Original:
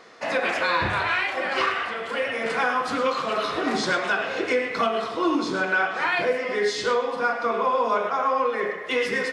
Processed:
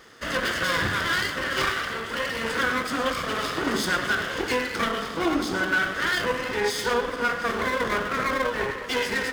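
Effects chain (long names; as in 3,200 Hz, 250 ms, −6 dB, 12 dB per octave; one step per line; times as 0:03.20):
lower of the sound and its delayed copy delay 0.61 ms
high-pass filter 42 Hz
high-shelf EQ 9,200 Hz +7.5 dB
on a send: delay that swaps between a low-pass and a high-pass 358 ms, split 1,200 Hz, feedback 55%, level −12 dB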